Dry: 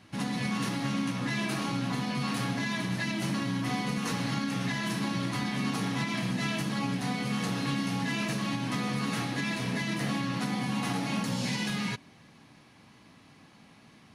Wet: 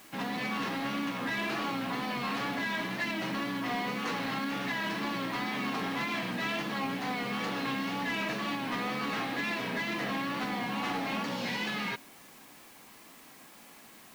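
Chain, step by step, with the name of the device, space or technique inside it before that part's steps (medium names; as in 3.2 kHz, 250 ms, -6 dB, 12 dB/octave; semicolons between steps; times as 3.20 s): tape answering machine (band-pass 320–3400 Hz; saturation -28.5 dBFS, distortion -19 dB; wow and flutter; white noise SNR 22 dB); trim +3.5 dB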